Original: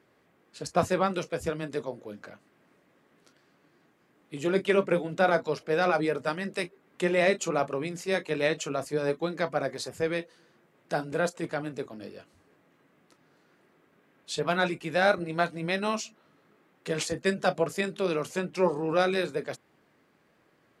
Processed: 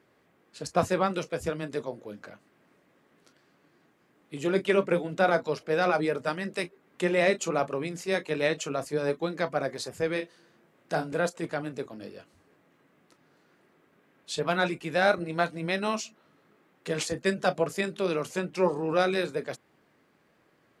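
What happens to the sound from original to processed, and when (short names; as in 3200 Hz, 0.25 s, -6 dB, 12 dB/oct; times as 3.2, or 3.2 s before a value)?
10.13–11.13 doubler 32 ms -7 dB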